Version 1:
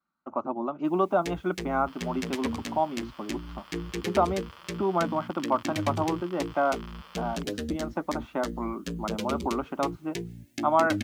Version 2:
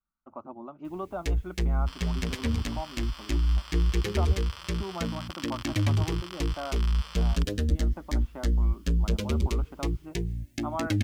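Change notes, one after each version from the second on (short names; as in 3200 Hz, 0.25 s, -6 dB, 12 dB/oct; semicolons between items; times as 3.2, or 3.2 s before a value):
speech -11.5 dB; second sound: remove tape spacing loss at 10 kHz 26 dB; master: remove HPF 180 Hz 12 dB/oct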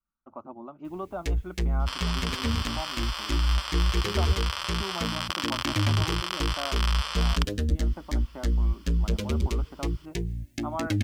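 second sound +11.5 dB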